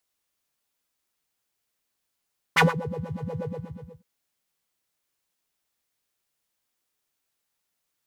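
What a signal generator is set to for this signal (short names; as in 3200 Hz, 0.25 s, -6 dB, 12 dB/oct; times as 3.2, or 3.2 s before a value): synth patch with filter wobble E3, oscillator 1 square, interval +19 st, oscillator 2 level -1 dB, noise -1 dB, filter bandpass, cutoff 160 Hz, Q 3.2, filter envelope 2.5 oct, filter decay 0.31 s, filter sustain 25%, attack 14 ms, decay 0.16 s, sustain -22 dB, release 0.60 s, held 0.87 s, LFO 8.3 Hz, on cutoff 1.5 oct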